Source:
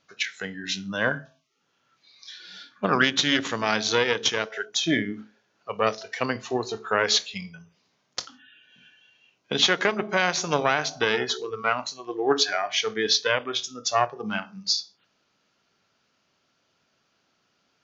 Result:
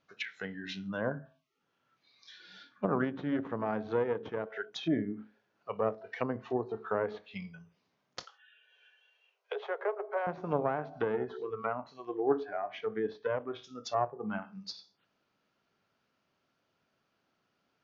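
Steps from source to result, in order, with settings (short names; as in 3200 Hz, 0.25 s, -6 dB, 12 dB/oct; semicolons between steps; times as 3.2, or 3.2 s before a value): LPF 2000 Hz 6 dB/oct; treble ducked by the level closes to 900 Hz, closed at -24.5 dBFS; 8.23–10.27 steep high-pass 400 Hz 96 dB/oct; gain -5 dB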